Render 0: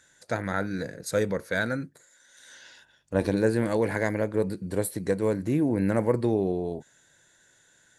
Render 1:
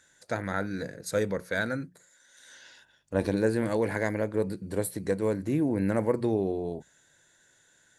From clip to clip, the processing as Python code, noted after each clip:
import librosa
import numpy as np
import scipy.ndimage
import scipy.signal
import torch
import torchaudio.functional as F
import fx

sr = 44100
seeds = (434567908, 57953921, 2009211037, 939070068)

y = fx.hum_notches(x, sr, base_hz=60, count=3)
y = F.gain(torch.from_numpy(y), -2.0).numpy()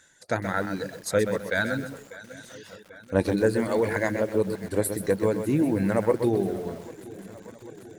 y = fx.echo_swing(x, sr, ms=791, ratio=3, feedback_pct=58, wet_db=-17.5)
y = fx.dereverb_blind(y, sr, rt60_s=1.1)
y = fx.echo_crushed(y, sr, ms=128, feedback_pct=35, bits=8, wet_db=-8.0)
y = F.gain(torch.from_numpy(y), 4.5).numpy()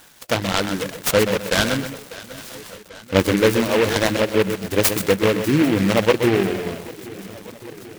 y = fx.high_shelf(x, sr, hz=4500.0, db=10.0)
y = fx.noise_mod_delay(y, sr, seeds[0], noise_hz=1800.0, depth_ms=0.11)
y = F.gain(torch.from_numpy(y), 6.0).numpy()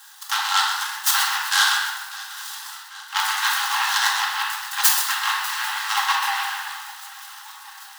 y = scipy.signal.sosfilt(scipy.signal.cheby1(10, 1.0, 790.0, 'highpass', fs=sr, output='sos'), x)
y = fx.peak_eq(y, sr, hz=2300.0, db=-13.5, octaves=0.3)
y = fx.room_shoebox(y, sr, seeds[1], volume_m3=780.0, walls='mixed', distance_m=2.2)
y = F.gain(torch.from_numpy(y), 1.5).numpy()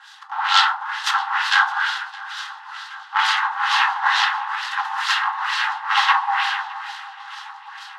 y = fx.filter_lfo_lowpass(x, sr, shape='sine', hz=2.2, low_hz=670.0, high_hz=4200.0, q=1.2)
y = fx.echo_feedback(y, sr, ms=614, feedback_pct=59, wet_db=-21.0)
y = F.gain(torch.from_numpy(y), 4.0).numpy()